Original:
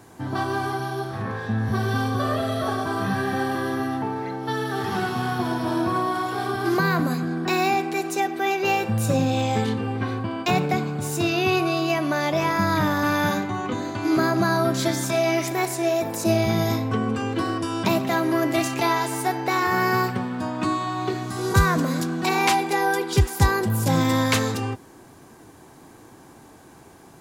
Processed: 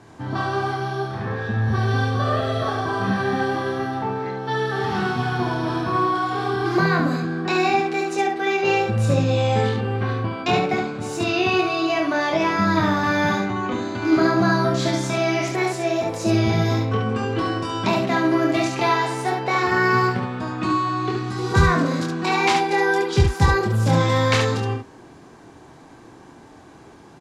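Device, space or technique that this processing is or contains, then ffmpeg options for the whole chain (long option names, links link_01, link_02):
slapback doubling: -filter_complex "[0:a]lowpass=5600,asplit=3[link_01][link_02][link_03];[link_02]adelay=25,volume=-4dB[link_04];[link_03]adelay=71,volume=-4dB[link_05];[link_01][link_04][link_05]amix=inputs=3:normalize=0"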